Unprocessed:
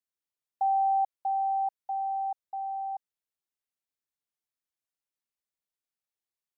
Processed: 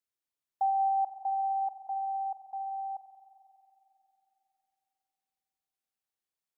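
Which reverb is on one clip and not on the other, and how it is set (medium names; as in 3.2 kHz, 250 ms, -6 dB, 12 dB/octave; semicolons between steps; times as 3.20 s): spring tank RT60 3.2 s, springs 45 ms, chirp 30 ms, DRR 8 dB; trim -1 dB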